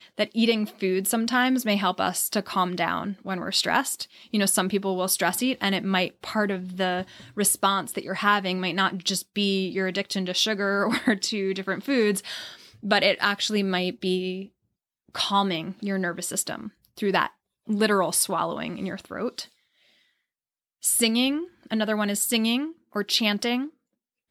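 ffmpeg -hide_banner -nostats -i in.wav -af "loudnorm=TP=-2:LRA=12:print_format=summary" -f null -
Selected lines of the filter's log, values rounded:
Input Integrated:    -24.9 LUFS
Input True Peak:      -6.8 dBTP
Input LRA:             2.6 LU
Input Threshold:     -35.3 LUFS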